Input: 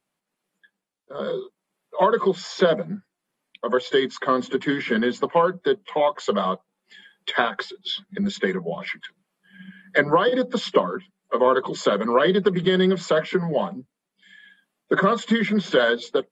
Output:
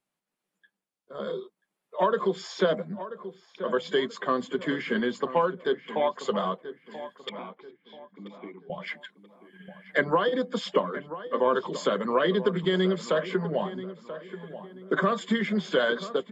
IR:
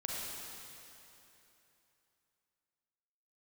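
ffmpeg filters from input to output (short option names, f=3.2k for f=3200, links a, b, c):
-filter_complex "[0:a]asettb=1/sr,asplit=3[a][b][c];[a]atrim=end=7.294[d];[b]atrim=start=7.29:end=8.7,asetpts=PTS-STARTPTS,afade=t=in:d=0.004:c=qsin,afade=t=out:st=1.406:d=0.004:c=qsin,asplit=3[e][f][g];[e]bandpass=f=300:t=q:w=8,volume=0dB[h];[f]bandpass=f=870:t=q:w=8,volume=-6dB[i];[g]bandpass=f=2.24k:t=q:w=8,volume=-9dB[j];[h][i][j]amix=inputs=3:normalize=0[k];[c]atrim=start=8.696[l];[d][k]acrossfade=d=0.004:c1=hsin:c2=qsin[m];[m][l]acrossfade=d=0.004:c1=qsin:c2=hsin,asplit=2[n][o];[o]adelay=984,lowpass=f=2.2k:p=1,volume=-13dB,asplit=2[p][q];[q]adelay=984,lowpass=f=2.2k:p=1,volume=0.38,asplit=2[r][s];[s]adelay=984,lowpass=f=2.2k:p=1,volume=0.38,asplit=2[t][u];[u]adelay=984,lowpass=f=2.2k:p=1,volume=0.38[v];[n][p][r][t][v]amix=inputs=5:normalize=0,volume=-5.5dB"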